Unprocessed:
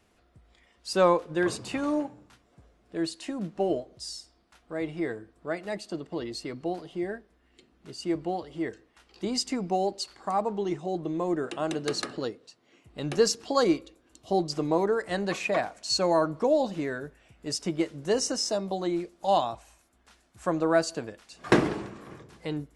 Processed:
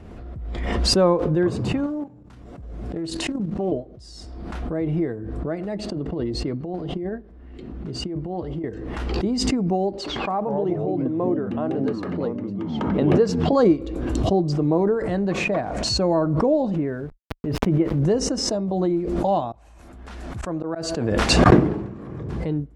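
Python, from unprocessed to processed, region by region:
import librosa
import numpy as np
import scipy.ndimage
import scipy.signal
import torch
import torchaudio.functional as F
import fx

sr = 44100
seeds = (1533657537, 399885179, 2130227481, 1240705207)

y = fx.chain(x, sr, fx.high_shelf(hz=5100.0, db=9.0),
    fx.level_steps(step_db=11),
    fx.doppler_dist(depth_ms=0.26), at=(1.86, 3.72))
y = fx.chain(y, sr, fx.high_shelf(hz=9500.0, db=-9.5),
    fx.over_compress(threshold_db=-34.0, ratio=-0.5), at=(5.79, 8.64))
y = fx.chain(y, sr, fx.bass_treble(bass_db=-9, treble_db=-9),
    fx.echo_pitch(ms=90, semitones=-5, count=2, db_per_echo=-6.0), at=(9.97, 13.53))
y = fx.chain(y, sr, fx.lowpass(hz=3000.0, slope=24),
    fx.sample_gate(floor_db=-47.0), at=(16.76, 17.99))
y = fx.chain(y, sr, fx.low_shelf(hz=500.0, db=-5.5),
    fx.auto_swell(attack_ms=155.0), at=(19.52, 21.46))
y = fx.highpass(y, sr, hz=82.0, slope=6)
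y = fx.tilt_eq(y, sr, slope=-4.5)
y = fx.pre_swell(y, sr, db_per_s=27.0)
y = F.gain(torch.from_numpy(y), -1.0).numpy()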